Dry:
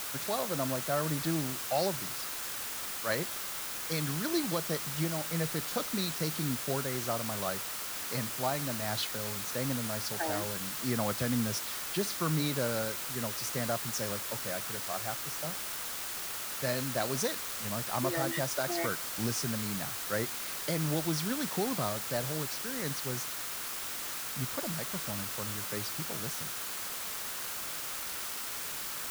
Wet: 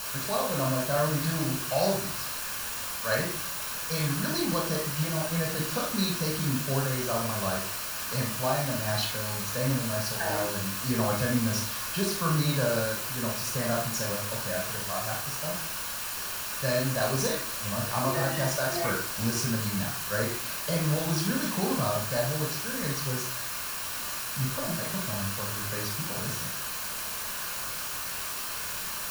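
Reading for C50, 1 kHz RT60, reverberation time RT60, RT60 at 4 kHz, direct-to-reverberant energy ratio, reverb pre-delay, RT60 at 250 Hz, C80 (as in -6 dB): 4.5 dB, 0.45 s, 0.45 s, 0.35 s, -1.5 dB, 22 ms, 0.60 s, 10.0 dB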